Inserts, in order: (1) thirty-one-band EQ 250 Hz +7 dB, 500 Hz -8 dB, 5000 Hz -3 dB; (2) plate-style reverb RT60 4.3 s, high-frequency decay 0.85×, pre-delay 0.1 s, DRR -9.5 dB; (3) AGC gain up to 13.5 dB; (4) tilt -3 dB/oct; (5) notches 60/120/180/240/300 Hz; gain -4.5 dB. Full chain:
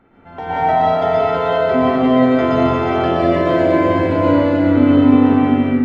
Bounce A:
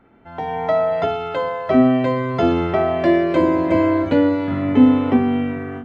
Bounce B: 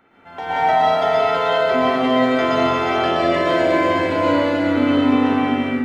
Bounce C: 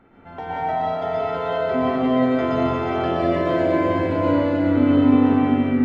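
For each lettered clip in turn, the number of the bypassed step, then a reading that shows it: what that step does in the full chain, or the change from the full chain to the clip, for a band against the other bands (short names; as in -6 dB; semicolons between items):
2, crest factor change +3.0 dB; 4, 125 Hz band -9.0 dB; 3, loudness change -5.5 LU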